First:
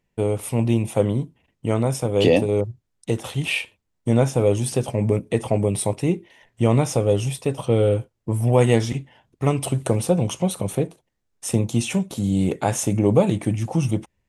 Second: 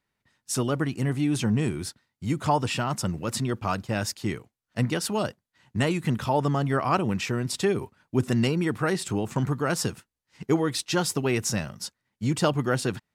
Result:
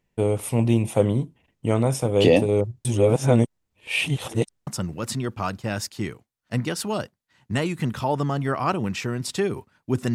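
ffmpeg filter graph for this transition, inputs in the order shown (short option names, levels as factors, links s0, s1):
-filter_complex "[0:a]apad=whole_dur=10.14,atrim=end=10.14,asplit=2[s0][s1];[s0]atrim=end=2.852[s2];[s1]atrim=start=2.848:end=4.672,asetpts=PTS-STARTPTS,areverse[s3];[1:a]atrim=start=2.918:end=8.39[s4];[s2][s3]acrossfade=d=0.004:c1=hsin:c2=hsin[s5];[s5][s4]acrossfade=d=0.004:c1=hsin:c2=hsin"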